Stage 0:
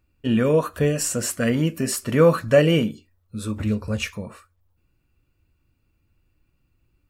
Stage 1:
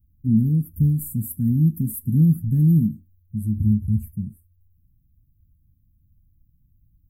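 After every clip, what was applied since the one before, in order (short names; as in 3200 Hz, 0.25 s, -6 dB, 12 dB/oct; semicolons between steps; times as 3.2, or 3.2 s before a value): inverse Chebyshev band-stop 510–6200 Hz, stop band 50 dB; gain +7 dB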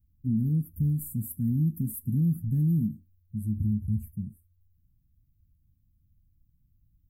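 limiter -13 dBFS, peak gain reduction 4 dB; gain -6 dB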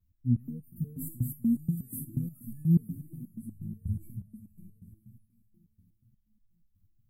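diffused feedback echo 0.5 s, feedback 41%, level -9 dB; vibrato 0.41 Hz 15 cents; stepped resonator 8.3 Hz 88–870 Hz; gain +7.5 dB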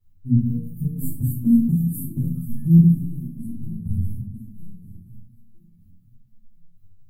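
shoebox room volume 320 m³, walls furnished, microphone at 4.3 m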